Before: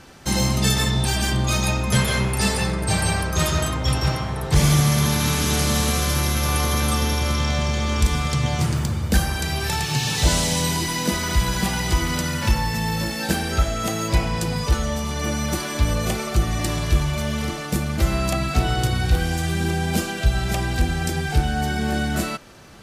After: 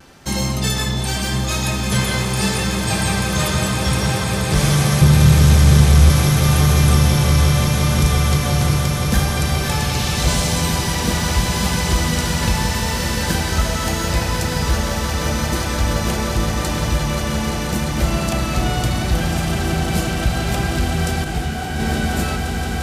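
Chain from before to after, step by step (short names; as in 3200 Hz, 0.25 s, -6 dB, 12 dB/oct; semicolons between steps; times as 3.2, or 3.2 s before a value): 5.01–6.1 resonant low shelf 190 Hz +13.5 dB, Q 1.5; soft clip -5 dBFS, distortion -17 dB; vibrato 0.79 Hz 26 cents; swelling echo 0.174 s, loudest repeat 8, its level -11 dB; 21.24–21.8 detuned doubles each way 42 cents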